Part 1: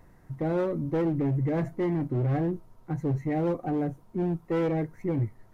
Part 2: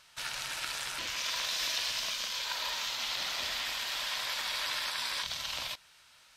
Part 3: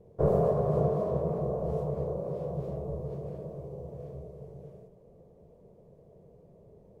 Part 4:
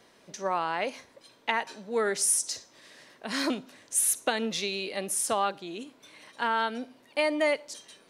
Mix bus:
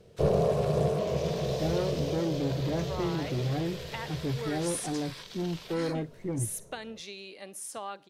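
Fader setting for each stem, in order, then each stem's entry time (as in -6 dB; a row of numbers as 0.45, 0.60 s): -4.5, -10.5, 0.0, -11.5 dB; 1.20, 0.00, 0.00, 2.45 s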